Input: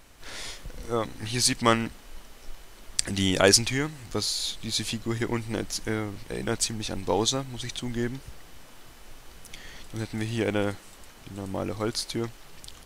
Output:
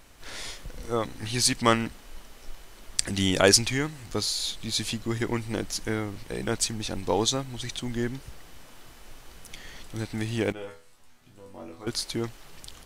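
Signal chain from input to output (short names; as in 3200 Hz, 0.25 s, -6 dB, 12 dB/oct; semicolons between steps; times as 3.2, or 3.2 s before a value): 10.52–11.87 resonator bank E2 fifth, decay 0.34 s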